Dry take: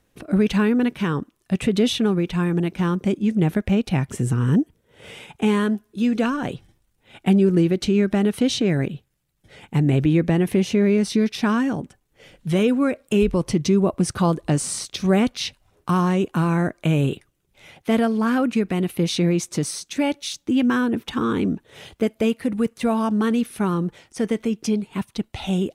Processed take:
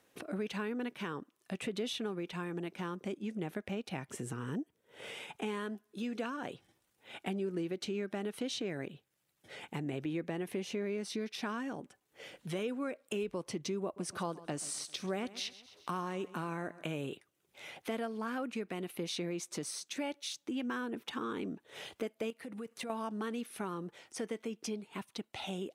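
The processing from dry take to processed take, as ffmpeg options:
ffmpeg -i in.wav -filter_complex "[0:a]asettb=1/sr,asplit=3[link_01][link_02][link_03];[link_01]atrim=end=13.834[link_04];[link_02]atrim=start=13.83:end=16.96,asetpts=PTS-STARTPTS,afade=type=in:duration=0.004:curve=qsin,afade=type=out:start_time=3.126:duration=0.004:curve=qsin,aecho=1:1:131|262|393:0.106|0.0424|0.0169,atrim=end_sample=138033[link_05];[link_03]atrim=start=16.956[link_06];[link_04][link_05]acrossfade=duration=0.004:curve1=hsin:curve2=qsin[link_07];[link_07][link_06]acrossfade=duration=0.004:curve1=qsin:curve2=hsin,asettb=1/sr,asplit=3[link_08][link_09][link_10];[link_08]atrim=end=22.304[link_11];[link_09]atrim=start=22.3:end=22.9,asetpts=PTS-STARTPTS,afade=type=in:duration=0.004:curve=qsin,afade=type=out:start_time=0.596:duration=0.004:curve=qsin,acompressor=threshold=-27dB:ratio=6:attack=3.2:release=140:knee=1:detection=peak[link_12];[link_10]atrim=start=22.896[link_13];[link_11][link_12]acrossfade=duration=0.004:curve1=hsin:curve2=qsin[link_14];[link_14][link_13]acrossfade=duration=0.004:curve1=qsin:curve2=hsin,highpass=100,bass=frequency=250:gain=-11,treble=frequency=4000:gain=-1,acompressor=threshold=-46dB:ratio=2" out.wav

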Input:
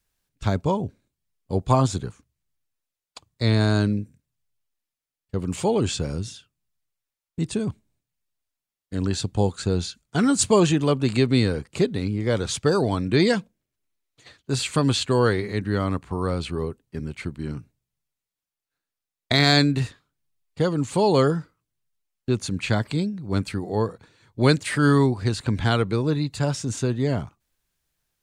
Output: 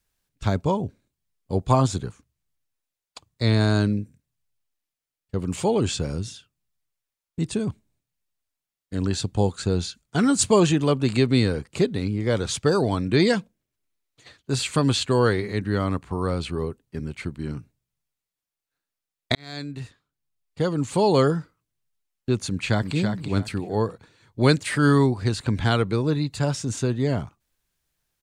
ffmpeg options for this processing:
ffmpeg -i in.wav -filter_complex "[0:a]asplit=2[link_01][link_02];[link_02]afade=type=in:start_time=22.49:duration=0.01,afade=type=out:start_time=22.95:duration=0.01,aecho=0:1:330|660|990:0.501187|0.125297|0.0313242[link_03];[link_01][link_03]amix=inputs=2:normalize=0,asplit=2[link_04][link_05];[link_04]atrim=end=19.35,asetpts=PTS-STARTPTS,afade=type=out:start_time=19.346:duration=0.004:curve=hsin[link_06];[link_05]atrim=start=19.35,asetpts=PTS-STARTPTS,afade=type=in:duration=1.55[link_07];[link_06][link_07]concat=n=2:v=0:a=1" out.wav

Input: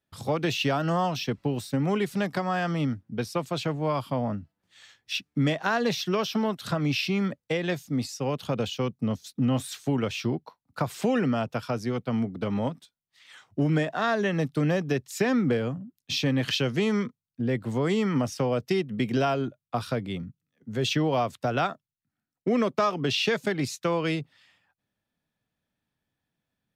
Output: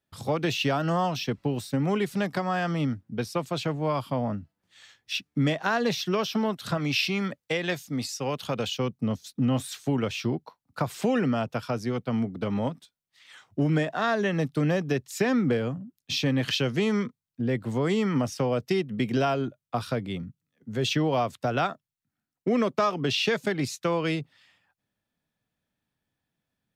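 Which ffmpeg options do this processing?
ffmpeg -i in.wav -filter_complex "[0:a]asettb=1/sr,asplit=3[link_01][link_02][link_03];[link_01]atrim=end=6.774[link_04];[link_02]atrim=start=6.77:end=8.77,asetpts=PTS-STARTPTS,afade=type=in:duration=0.004:curve=qsin,afade=type=out:start_time=1.996:duration=0.004:curve=qsin,tiltshelf=frequency=670:gain=-3.5[link_05];[link_03]atrim=start=8.766[link_06];[link_04][link_05]acrossfade=duration=0.004:curve1=hsin:curve2=qsin[link_07];[link_07][link_06]acrossfade=duration=0.004:curve1=qsin:curve2=hsin" out.wav

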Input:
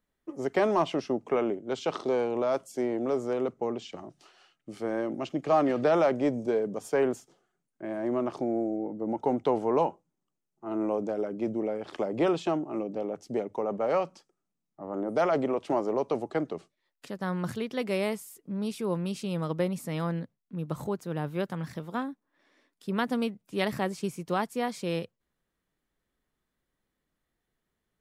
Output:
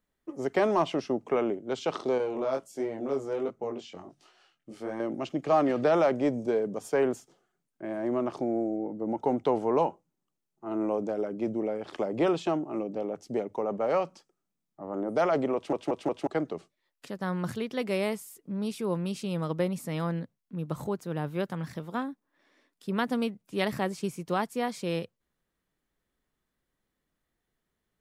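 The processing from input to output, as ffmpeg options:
ffmpeg -i in.wav -filter_complex "[0:a]asettb=1/sr,asplit=3[link_01][link_02][link_03];[link_01]atrim=end=2.184[link_04];[link_02]atrim=start=2.18:end=5,asetpts=PTS-STARTPTS,afade=type=in:duration=0.004:curve=qsin,afade=type=out:start_time=2.816:duration=0.004:curve=qsin,flanger=delay=18.5:depth=4.2:speed=1.4[link_05];[link_03]atrim=start=4.996[link_06];[link_04][link_05]acrossfade=duration=0.004:curve1=hsin:curve2=qsin[link_07];[link_07][link_06]acrossfade=duration=0.004:curve1=qsin:curve2=hsin,asplit=5[link_08][link_09][link_10][link_11][link_12];[link_08]atrim=end=15.732[link_13];[link_09]atrim=start=15.548:end=15.732[link_14];[link_10]atrim=start=15.548:end=15.732[link_15];[link_11]atrim=start=15.548:end=15.732[link_16];[link_12]atrim=start=16.268[link_17];[link_13][link_14]acrossfade=duration=0.004:curve1=hsin:curve2=hsin[link_18];[link_18][link_15]acrossfade=duration=0.004:curve1=hsin:curve2=hsin[link_19];[link_19][link_16]acrossfade=duration=0.004:curve1=hsin:curve2=hsin[link_20];[link_20][link_17]acrossfade=duration=0.004:curve1=hsin:curve2=hsin" out.wav

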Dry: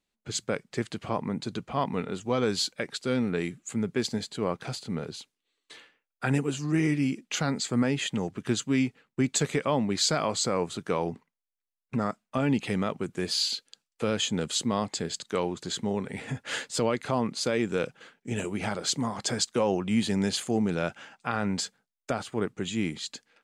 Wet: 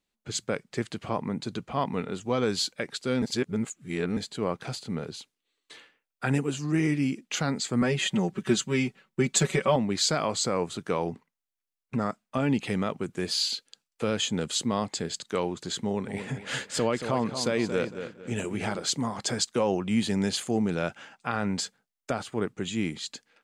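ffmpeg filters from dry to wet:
ffmpeg -i in.wav -filter_complex "[0:a]asettb=1/sr,asplit=3[link_01][link_02][link_03];[link_01]atrim=end=7.814[link_04];[link_02]atrim=start=7.81:end=9.76,asetpts=PTS-STARTPTS,afade=type=in:duration=0.004:curve=qsin,afade=type=out:start_time=1.946:duration=0.004:curve=qsin,aecho=1:1:5.3:0.97,atrim=end_sample=85995[link_05];[link_03]atrim=start=9.756[link_06];[link_04][link_05]acrossfade=duration=0.004:curve1=hsin:curve2=qsin[link_07];[link_07][link_06]acrossfade=duration=0.004:curve1=qsin:curve2=hsin,asettb=1/sr,asplit=3[link_08][link_09][link_10];[link_08]atrim=end=15.854[link_11];[link_09]atrim=start=15.85:end=18.79,asetpts=PTS-STARTPTS,afade=type=in:duration=0.004:curve=qsin,afade=type=out:start_time=2.936:duration=0.004:curve=qsin,asplit=2[link_12][link_13];[link_13]adelay=228,lowpass=frequency=4900:poles=1,volume=-9dB,asplit=2[link_14][link_15];[link_15]adelay=228,lowpass=frequency=4900:poles=1,volume=0.32,asplit=2[link_16][link_17];[link_17]adelay=228,lowpass=frequency=4900:poles=1,volume=0.32,asplit=2[link_18][link_19];[link_19]adelay=228,lowpass=frequency=4900:poles=1,volume=0.32[link_20];[link_12][link_14][link_16][link_18][link_20]amix=inputs=5:normalize=0,atrim=end_sample=129654[link_21];[link_10]atrim=start=18.786[link_22];[link_11][link_21]acrossfade=duration=0.004:curve1=hsin:curve2=qsin[link_23];[link_23][link_22]acrossfade=duration=0.004:curve1=qsin:curve2=hsin,asplit=3[link_24][link_25][link_26];[link_24]atrim=end=3.222[link_27];[link_25]atrim=start=3.218:end=4.172,asetpts=PTS-STARTPTS,areverse[link_28];[link_26]atrim=start=4.168[link_29];[link_27][link_28]acrossfade=duration=0.004:curve1=hsin:curve2=hsin[link_30];[link_30][link_29]acrossfade=duration=0.004:curve1=hsin:curve2=hsin" out.wav

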